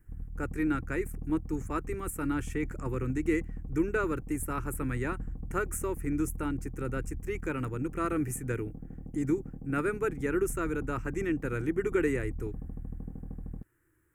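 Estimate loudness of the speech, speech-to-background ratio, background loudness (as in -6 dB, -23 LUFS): -33.0 LUFS, 10.0 dB, -43.0 LUFS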